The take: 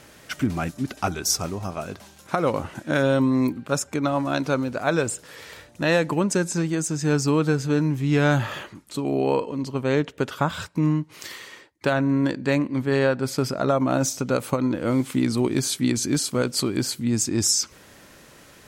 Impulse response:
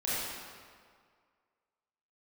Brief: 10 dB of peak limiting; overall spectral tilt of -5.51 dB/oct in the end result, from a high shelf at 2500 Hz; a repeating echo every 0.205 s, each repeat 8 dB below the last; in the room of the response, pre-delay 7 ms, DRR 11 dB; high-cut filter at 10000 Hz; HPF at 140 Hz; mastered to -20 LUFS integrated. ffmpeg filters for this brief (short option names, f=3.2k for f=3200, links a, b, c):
-filter_complex "[0:a]highpass=140,lowpass=10k,highshelf=f=2.5k:g=-8.5,alimiter=limit=-17dB:level=0:latency=1,aecho=1:1:205|410|615|820|1025:0.398|0.159|0.0637|0.0255|0.0102,asplit=2[a][b];[1:a]atrim=start_sample=2205,adelay=7[c];[b][c]afir=irnorm=-1:irlink=0,volume=-19dB[d];[a][d]amix=inputs=2:normalize=0,volume=7.5dB"